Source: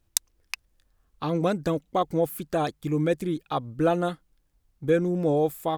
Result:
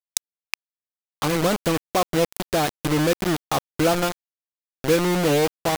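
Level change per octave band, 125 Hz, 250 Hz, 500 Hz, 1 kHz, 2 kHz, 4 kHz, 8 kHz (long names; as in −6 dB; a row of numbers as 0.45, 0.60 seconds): +3.0, +3.0, +3.0, +4.0, +9.5, +10.5, +6.5 decibels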